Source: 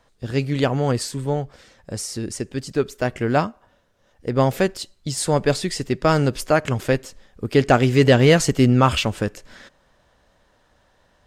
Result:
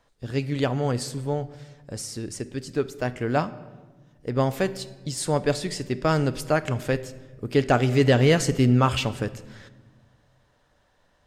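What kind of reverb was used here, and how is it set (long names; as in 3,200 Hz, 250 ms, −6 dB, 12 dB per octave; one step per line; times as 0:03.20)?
rectangular room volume 1,000 cubic metres, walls mixed, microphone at 0.34 metres
level −5 dB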